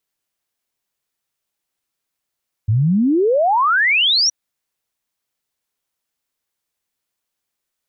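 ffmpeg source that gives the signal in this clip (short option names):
-f lavfi -i "aevalsrc='0.251*clip(min(t,1.62-t)/0.01,0,1)*sin(2*PI*100*1.62/log(5900/100)*(exp(log(5900/100)*t/1.62)-1))':d=1.62:s=44100"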